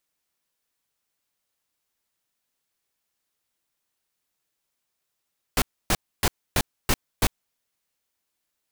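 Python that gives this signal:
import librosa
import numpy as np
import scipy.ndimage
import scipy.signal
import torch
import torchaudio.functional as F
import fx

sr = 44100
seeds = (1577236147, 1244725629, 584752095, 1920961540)

y = fx.noise_burst(sr, seeds[0], colour='pink', on_s=0.05, off_s=0.28, bursts=6, level_db=-20.0)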